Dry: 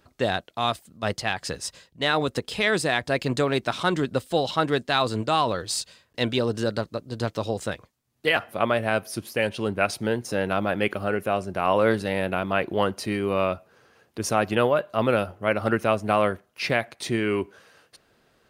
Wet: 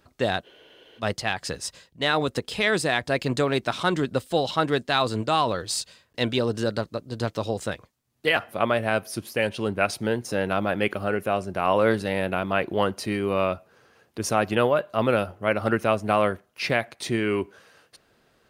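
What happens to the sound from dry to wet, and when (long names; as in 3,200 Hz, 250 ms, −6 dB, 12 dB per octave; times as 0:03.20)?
0:00.47: frozen spectrum 0.52 s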